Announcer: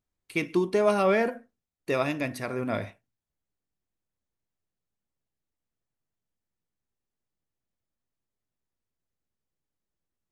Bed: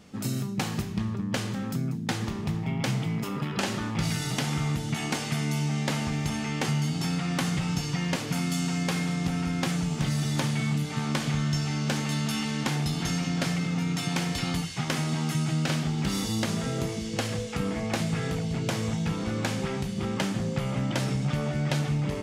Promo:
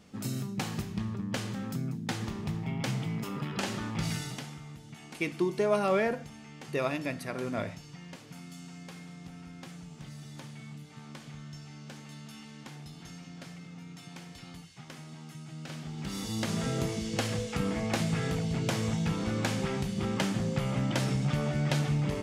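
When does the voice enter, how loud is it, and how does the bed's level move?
4.85 s, -4.0 dB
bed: 4.16 s -4.5 dB
4.61 s -18 dB
15.44 s -18 dB
16.63 s -1.5 dB

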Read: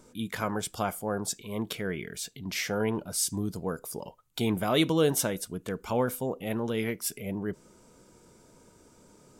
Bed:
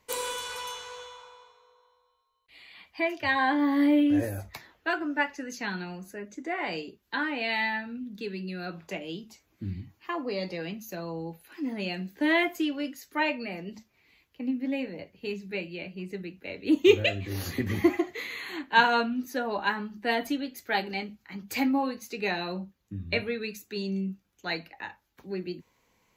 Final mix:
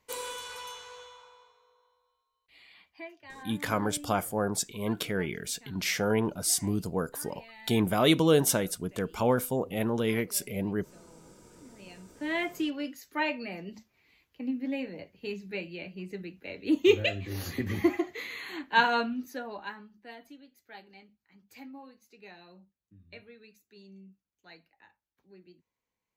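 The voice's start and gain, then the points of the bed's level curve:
3.30 s, +2.0 dB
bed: 2.72 s -5 dB
3.24 s -22 dB
11.64 s -22 dB
12.57 s -2.5 dB
19.10 s -2.5 dB
20.17 s -20.5 dB

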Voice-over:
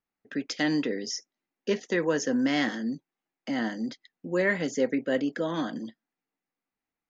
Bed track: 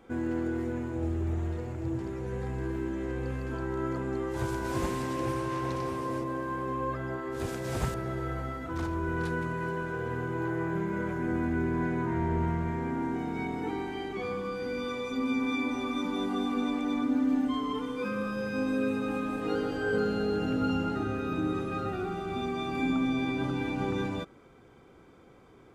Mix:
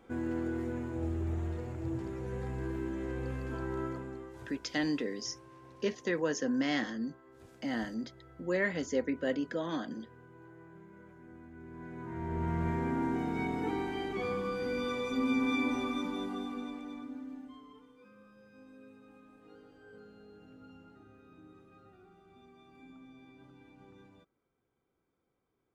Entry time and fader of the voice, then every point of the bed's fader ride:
4.15 s, -5.5 dB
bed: 3.79 s -3.5 dB
4.66 s -22.5 dB
11.52 s -22.5 dB
12.66 s -0.5 dB
15.74 s -0.5 dB
18.01 s -26 dB

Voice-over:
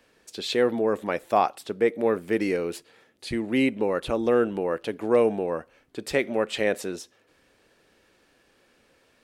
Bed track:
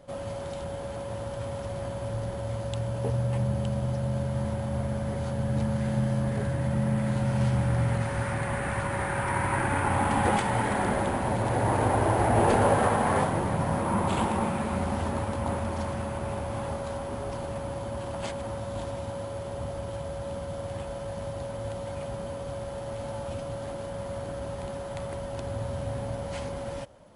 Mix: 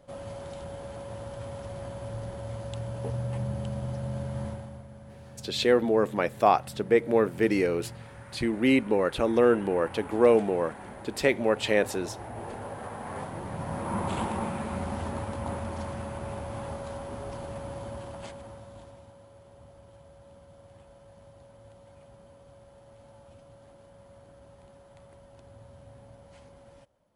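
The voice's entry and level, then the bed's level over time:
5.10 s, +0.5 dB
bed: 4.47 s -4.5 dB
4.85 s -17 dB
12.72 s -17 dB
13.97 s -4 dB
17.89 s -4 dB
19.18 s -18 dB

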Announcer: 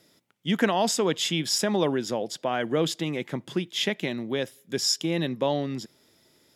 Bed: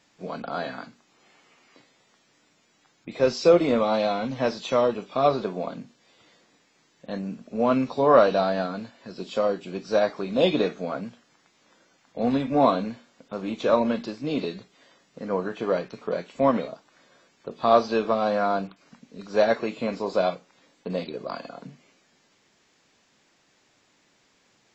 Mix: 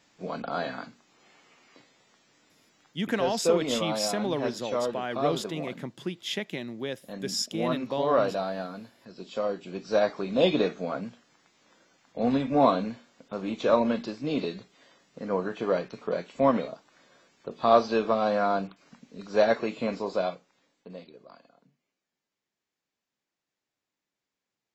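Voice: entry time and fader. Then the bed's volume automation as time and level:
2.50 s, -5.5 dB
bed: 2.85 s -0.5 dB
3.19 s -7.5 dB
9.13 s -7.5 dB
10.06 s -1.5 dB
19.93 s -1.5 dB
21.78 s -24 dB

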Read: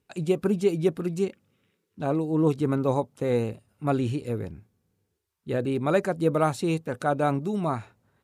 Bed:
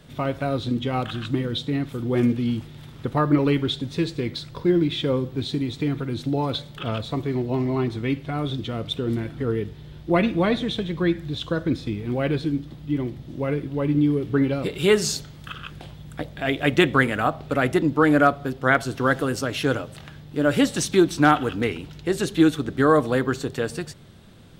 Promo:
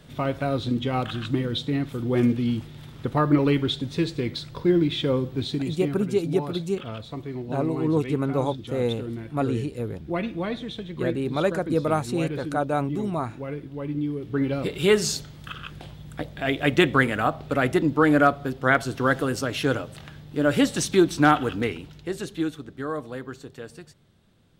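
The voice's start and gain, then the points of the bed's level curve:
5.50 s, -0.5 dB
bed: 5.44 s -0.5 dB
6.14 s -8 dB
14.16 s -8 dB
14.59 s -1 dB
21.55 s -1 dB
22.74 s -13 dB

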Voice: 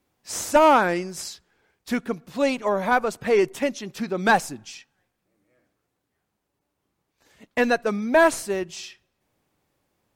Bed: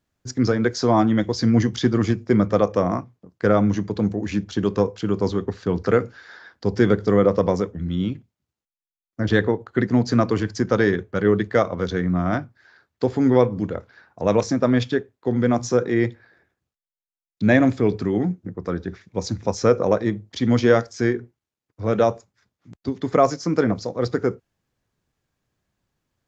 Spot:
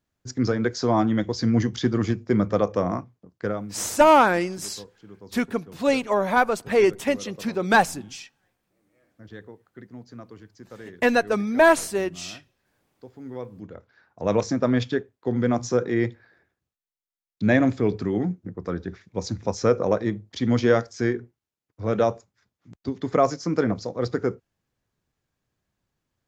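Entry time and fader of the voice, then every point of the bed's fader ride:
3.45 s, +1.0 dB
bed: 3.36 s -3.5 dB
3.80 s -23.5 dB
13.11 s -23.5 dB
14.34 s -3 dB

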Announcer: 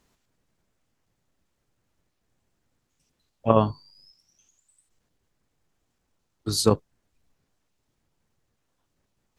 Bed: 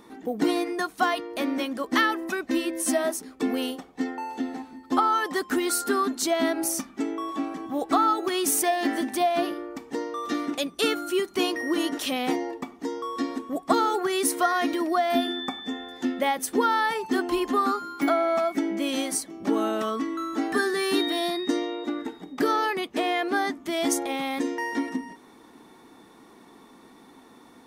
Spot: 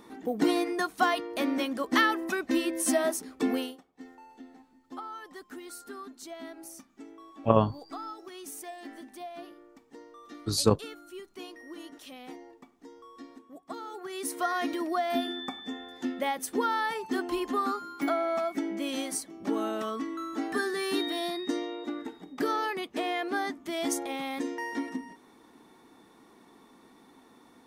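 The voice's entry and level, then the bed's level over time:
4.00 s, -3.0 dB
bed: 3.56 s -1.5 dB
3.84 s -18.5 dB
13.80 s -18.5 dB
14.51 s -5.5 dB

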